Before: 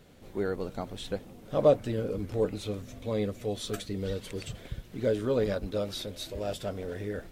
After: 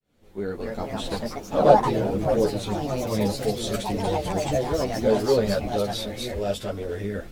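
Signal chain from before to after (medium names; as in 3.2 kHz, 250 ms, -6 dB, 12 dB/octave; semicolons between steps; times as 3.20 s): fade-in on the opening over 0.90 s; ever faster or slower copies 283 ms, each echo +3 st, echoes 3; three-phase chorus; trim +8.5 dB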